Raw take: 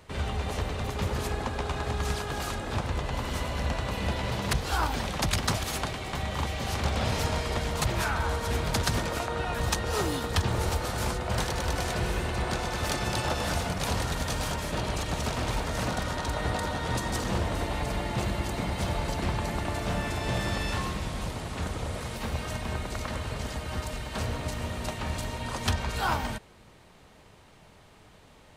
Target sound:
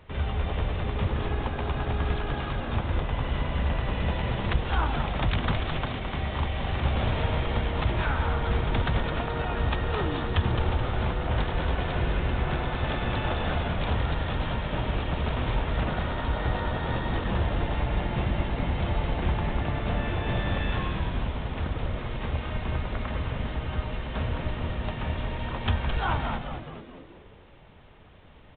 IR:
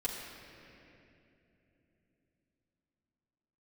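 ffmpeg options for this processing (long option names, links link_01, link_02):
-filter_complex "[0:a]lowshelf=frequency=80:gain=8,asplit=7[link_01][link_02][link_03][link_04][link_05][link_06][link_07];[link_02]adelay=214,afreqshift=-100,volume=-6.5dB[link_08];[link_03]adelay=428,afreqshift=-200,volume=-12.2dB[link_09];[link_04]adelay=642,afreqshift=-300,volume=-17.9dB[link_10];[link_05]adelay=856,afreqshift=-400,volume=-23.5dB[link_11];[link_06]adelay=1070,afreqshift=-500,volume=-29.2dB[link_12];[link_07]adelay=1284,afreqshift=-600,volume=-34.9dB[link_13];[link_01][link_08][link_09][link_10][link_11][link_12][link_13]amix=inputs=7:normalize=0,volume=-1dB" -ar 8000 -c:a pcm_alaw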